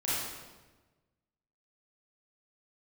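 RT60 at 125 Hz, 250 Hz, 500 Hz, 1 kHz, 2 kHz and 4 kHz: 1.7, 1.4, 1.3, 1.1, 1.1, 0.95 seconds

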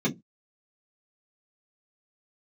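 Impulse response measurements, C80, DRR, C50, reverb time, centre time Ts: 30.0 dB, −5.0 dB, 21.5 dB, 0.15 s, 12 ms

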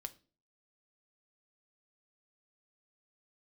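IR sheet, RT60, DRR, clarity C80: non-exponential decay, 8.0 dB, 25.0 dB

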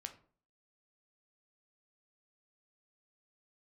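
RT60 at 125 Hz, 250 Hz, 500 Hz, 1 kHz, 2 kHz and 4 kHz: 0.50, 0.50, 0.50, 0.45, 0.35, 0.25 seconds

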